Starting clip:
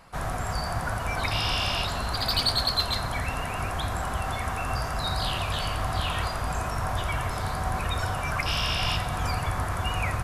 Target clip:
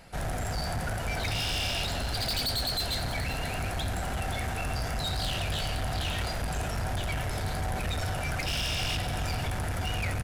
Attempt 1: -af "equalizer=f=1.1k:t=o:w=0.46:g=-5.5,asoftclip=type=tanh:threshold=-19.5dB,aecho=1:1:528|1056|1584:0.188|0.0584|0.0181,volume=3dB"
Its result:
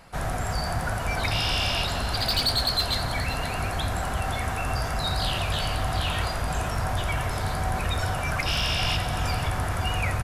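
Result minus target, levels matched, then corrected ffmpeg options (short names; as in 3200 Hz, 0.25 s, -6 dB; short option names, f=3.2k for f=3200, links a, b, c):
soft clip: distortion -10 dB; 1000 Hz band +2.0 dB
-af "equalizer=f=1.1k:t=o:w=0.46:g=-15,asoftclip=type=tanh:threshold=-30dB,aecho=1:1:528|1056|1584:0.188|0.0584|0.0181,volume=3dB"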